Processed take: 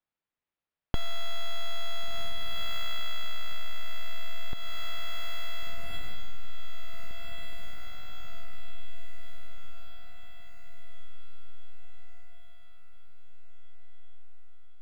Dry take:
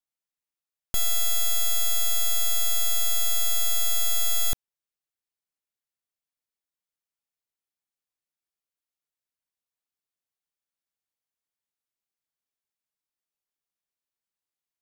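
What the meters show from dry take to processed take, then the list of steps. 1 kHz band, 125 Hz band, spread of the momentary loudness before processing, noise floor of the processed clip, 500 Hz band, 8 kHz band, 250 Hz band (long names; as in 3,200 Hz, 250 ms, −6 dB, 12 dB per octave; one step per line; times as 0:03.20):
−0.5 dB, +4.5 dB, 3 LU, below −85 dBFS, −1.5 dB, −26.0 dB, can't be measured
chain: high-frequency loss of the air 350 metres
feedback delay with all-pass diffusion 1,483 ms, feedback 51%, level −4 dB
downward compressor 6 to 1, threshold −29 dBFS, peak gain reduction 10.5 dB
level +7.5 dB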